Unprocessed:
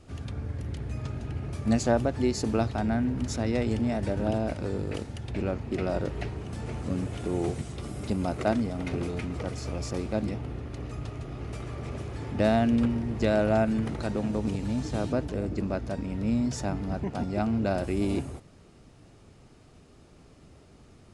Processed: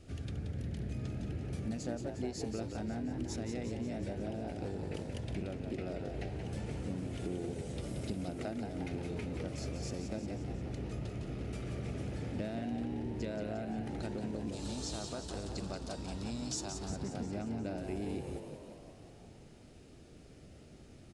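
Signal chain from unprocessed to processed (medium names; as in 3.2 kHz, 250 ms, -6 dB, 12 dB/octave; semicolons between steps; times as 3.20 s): 14.52–16.90 s: graphic EQ 125/250/500/1000/2000/4000/8000 Hz -8/-6/-7/+12/-9/+9/+9 dB; compression 6:1, threshold -34 dBFS, peak gain reduction 15 dB; peaking EQ 1 kHz -12 dB 0.6 oct; frequency-shifting echo 178 ms, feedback 60%, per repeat +70 Hz, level -7 dB; trim -2 dB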